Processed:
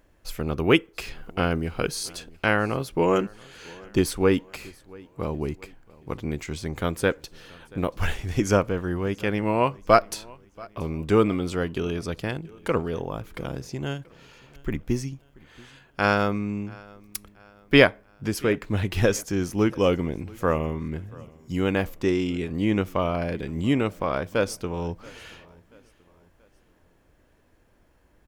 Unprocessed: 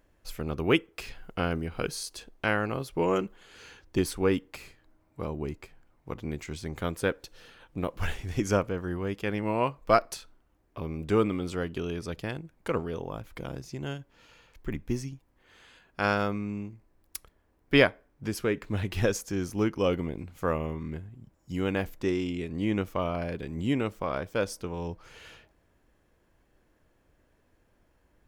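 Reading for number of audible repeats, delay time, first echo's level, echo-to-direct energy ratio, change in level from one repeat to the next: 2, 0.681 s, -24.0 dB, -23.0 dB, -7.5 dB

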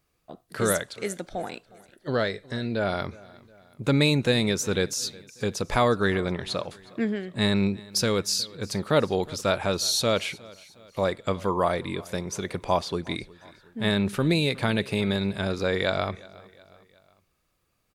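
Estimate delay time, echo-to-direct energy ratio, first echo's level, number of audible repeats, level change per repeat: 0.363 s, -21.0 dB, -22.0 dB, 3, -6.0 dB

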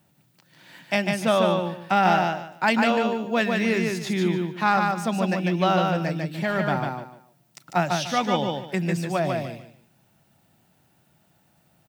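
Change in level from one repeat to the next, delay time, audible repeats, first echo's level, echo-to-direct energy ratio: -12.5 dB, 0.148 s, 3, -3.5 dB, -3.0 dB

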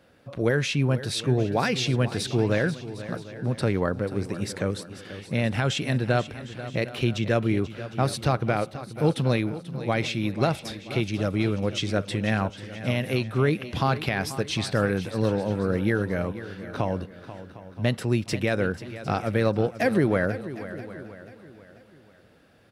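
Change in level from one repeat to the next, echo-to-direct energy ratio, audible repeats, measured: no steady repeat, -11.5 dB, 6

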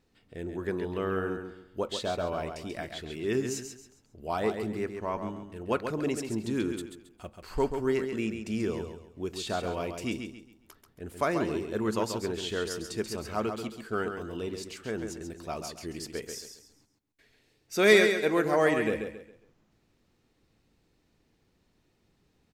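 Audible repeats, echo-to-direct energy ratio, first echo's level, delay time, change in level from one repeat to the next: 3, -6.5 dB, -7.0 dB, 0.136 s, -10.0 dB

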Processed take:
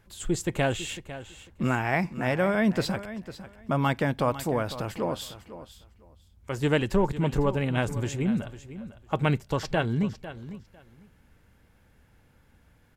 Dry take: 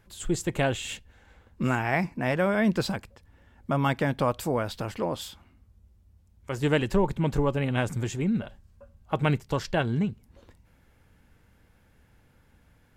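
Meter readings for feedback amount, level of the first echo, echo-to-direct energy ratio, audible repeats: 18%, -14.0 dB, -14.0 dB, 2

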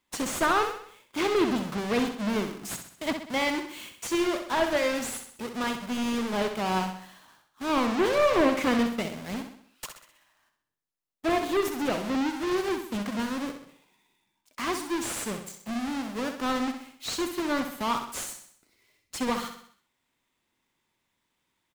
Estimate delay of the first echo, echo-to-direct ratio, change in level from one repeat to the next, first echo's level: 64 ms, -7.0 dB, -6.0 dB, -8.0 dB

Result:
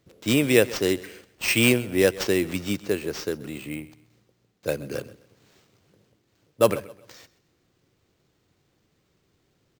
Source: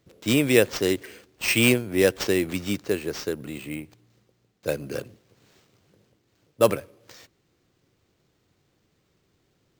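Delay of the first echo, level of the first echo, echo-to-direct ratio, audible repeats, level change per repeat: 0.13 s, -19.0 dB, -18.5 dB, 2, -10.0 dB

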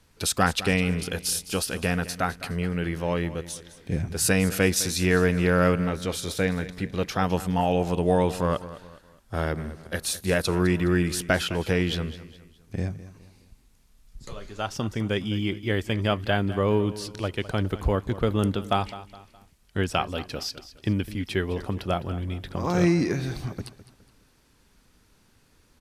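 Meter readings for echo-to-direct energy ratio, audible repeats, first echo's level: -15.0 dB, 3, -15.5 dB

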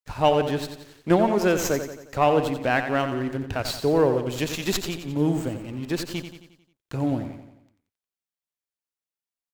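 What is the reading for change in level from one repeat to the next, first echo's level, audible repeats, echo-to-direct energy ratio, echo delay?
-6.0 dB, -9.0 dB, 5, -7.5 dB, 89 ms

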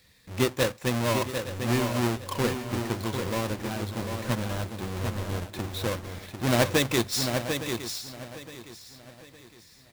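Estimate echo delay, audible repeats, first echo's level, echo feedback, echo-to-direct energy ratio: 0.747 s, 6, -6.5 dB, no steady repeat, -5.5 dB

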